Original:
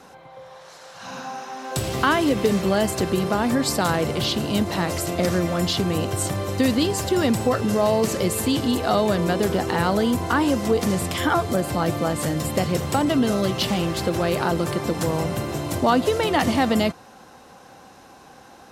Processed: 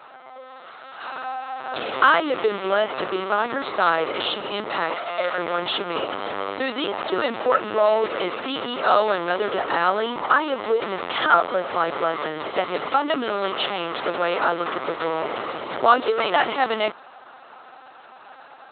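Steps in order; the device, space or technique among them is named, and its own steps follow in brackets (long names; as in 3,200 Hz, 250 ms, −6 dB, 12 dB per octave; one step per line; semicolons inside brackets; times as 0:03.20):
0:04.94–0:05.39: Butterworth high-pass 480 Hz 36 dB per octave
talking toy (linear-prediction vocoder at 8 kHz pitch kept; high-pass filter 490 Hz 12 dB per octave; parametric band 1,300 Hz +7 dB 0.35 octaves)
level +3.5 dB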